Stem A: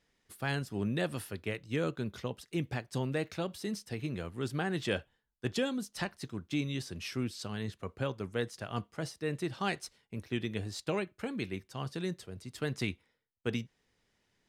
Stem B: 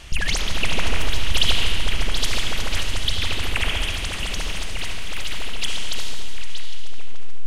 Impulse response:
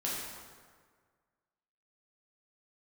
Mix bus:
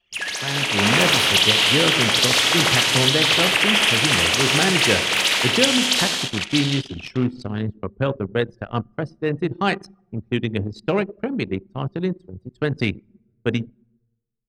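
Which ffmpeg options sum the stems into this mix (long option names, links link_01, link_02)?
-filter_complex "[0:a]volume=-0.5dB,asplit=2[link_01][link_02];[link_02]volume=-12dB[link_03];[1:a]highpass=400,alimiter=limit=-18.5dB:level=0:latency=1:release=376,volume=-2dB,asplit=2[link_04][link_05];[link_05]volume=-5dB[link_06];[2:a]atrim=start_sample=2205[link_07];[link_03][link_06]amix=inputs=2:normalize=0[link_08];[link_08][link_07]afir=irnorm=-1:irlink=0[link_09];[link_01][link_04][link_09]amix=inputs=3:normalize=0,anlmdn=6.31,dynaudnorm=framelen=130:gausssize=11:maxgain=11.5dB"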